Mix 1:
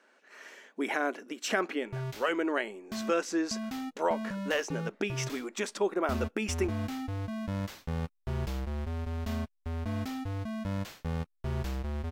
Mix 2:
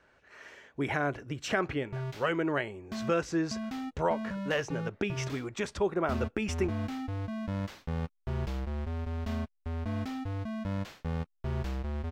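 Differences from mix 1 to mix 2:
speech: remove brick-wall FIR high-pass 190 Hz; master: add treble shelf 7 kHz -11.5 dB

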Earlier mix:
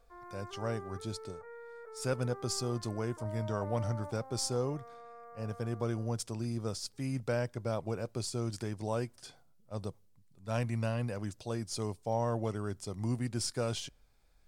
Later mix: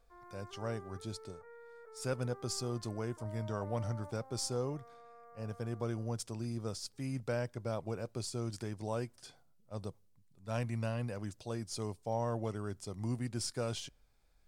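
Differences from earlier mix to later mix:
speech -3.0 dB; background -5.5 dB

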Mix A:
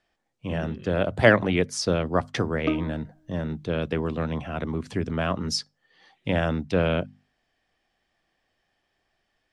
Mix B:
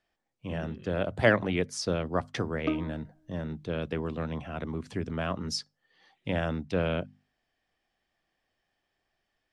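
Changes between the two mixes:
speech -5.5 dB; background -4.0 dB

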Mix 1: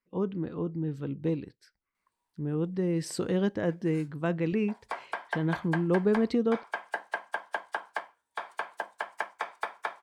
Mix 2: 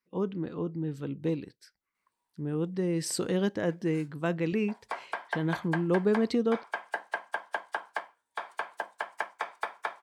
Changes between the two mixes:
speech: add treble shelf 3.9 kHz +7.5 dB; master: add bass shelf 65 Hz -11.5 dB

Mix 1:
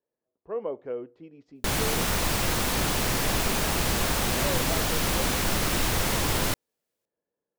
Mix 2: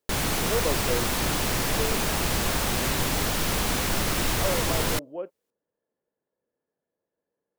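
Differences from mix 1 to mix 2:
speech +3.0 dB; background: entry -1.55 s

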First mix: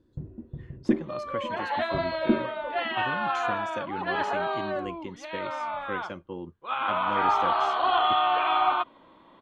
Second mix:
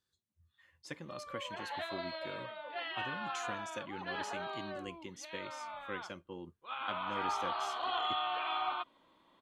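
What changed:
speech +5.0 dB; first sound: muted; master: add pre-emphasis filter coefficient 0.8

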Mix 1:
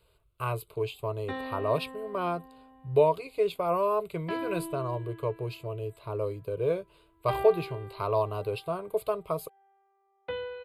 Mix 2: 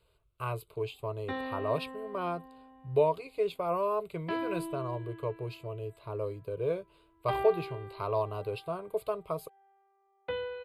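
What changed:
speech -3.5 dB; master: add treble shelf 10 kHz -5.5 dB

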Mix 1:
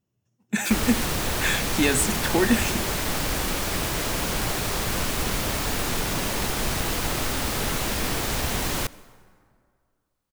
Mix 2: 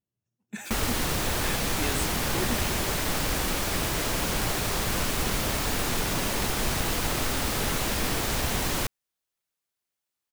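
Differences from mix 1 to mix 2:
speech -11.5 dB; reverb: off

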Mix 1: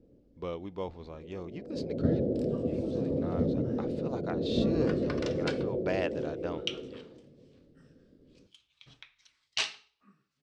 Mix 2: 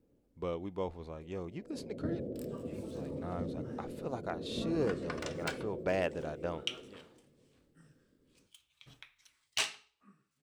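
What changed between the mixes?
first sound -10.5 dB; master: remove resonant low-pass 4.9 kHz, resonance Q 1.5

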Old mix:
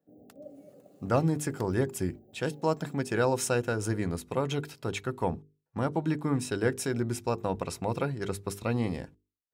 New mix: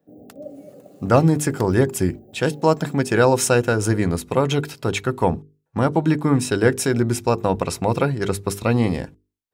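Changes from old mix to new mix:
speech +10.5 dB; background +10.5 dB

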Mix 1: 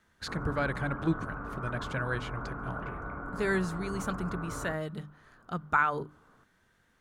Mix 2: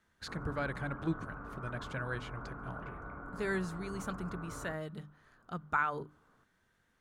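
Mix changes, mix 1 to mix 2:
speech -5.5 dB; background -6.5 dB

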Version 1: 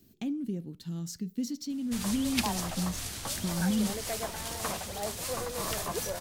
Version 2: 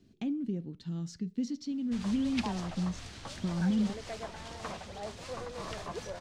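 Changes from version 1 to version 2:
background -4.5 dB; master: add distance through air 120 m

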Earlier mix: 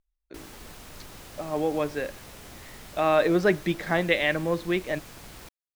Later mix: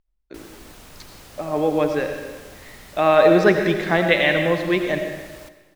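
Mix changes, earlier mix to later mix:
speech +3.5 dB; reverb: on, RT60 1.3 s

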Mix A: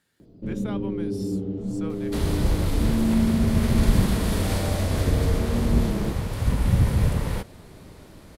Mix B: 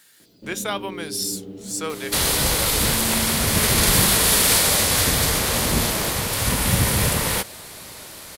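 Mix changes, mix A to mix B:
speech +12.0 dB; second sound +9.5 dB; master: add tilt EQ +3.5 dB/octave

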